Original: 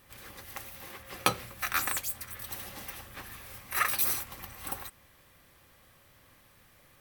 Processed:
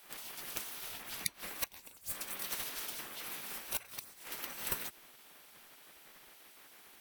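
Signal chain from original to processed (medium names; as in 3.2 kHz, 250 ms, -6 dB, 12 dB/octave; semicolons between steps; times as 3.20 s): inverted gate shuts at -18 dBFS, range -26 dB; spectral gate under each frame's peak -10 dB weak; reverse echo 69 ms -21 dB; trim +5 dB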